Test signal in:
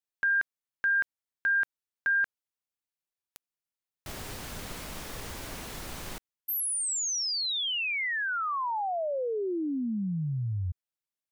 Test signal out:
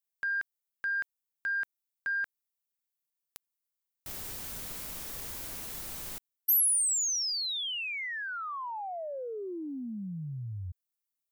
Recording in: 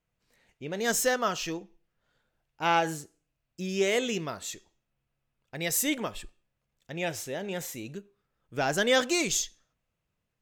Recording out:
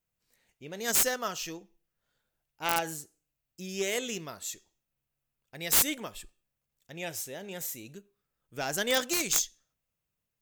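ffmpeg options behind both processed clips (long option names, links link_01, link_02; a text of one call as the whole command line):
ffmpeg -i in.wav -af "aemphasis=mode=production:type=50kf,aeval=exprs='0.596*(cos(1*acos(clip(val(0)/0.596,-1,1)))-cos(1*PI/2))+0.15*(cos(3*acos(clip(val(0)/0.596,-1,1)))-cos(3*PI/2))':channel_layout=same,aeval=exprs='(mod(7.94*val(0)+1,2)-1)/7.94':channel_layout=same,volume=5dB" out.wav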